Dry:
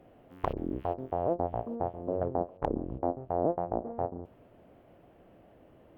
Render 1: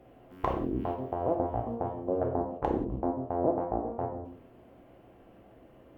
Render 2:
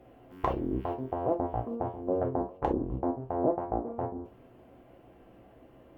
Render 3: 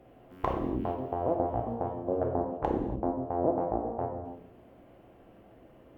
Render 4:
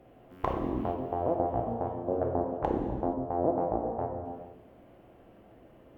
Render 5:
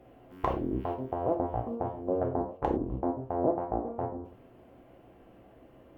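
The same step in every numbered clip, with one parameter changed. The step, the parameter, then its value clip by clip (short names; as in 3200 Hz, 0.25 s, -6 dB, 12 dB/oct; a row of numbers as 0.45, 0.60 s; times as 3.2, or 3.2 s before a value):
non-linear reverb, gate: 210, 90, 320, 500, 130 ms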